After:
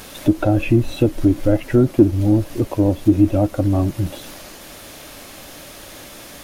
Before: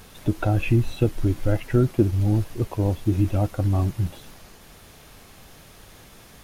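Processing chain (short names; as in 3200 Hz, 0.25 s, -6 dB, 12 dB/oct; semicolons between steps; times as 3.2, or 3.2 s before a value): in parallel at -7.5 dB: soft clip -20 dBFS, distortion -10 dB; on the sum: small resonant body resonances 300/560 Hz, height 11 dB, ringing for 30 ms; mismatched tape noise reduction encoder only; gain -1 dB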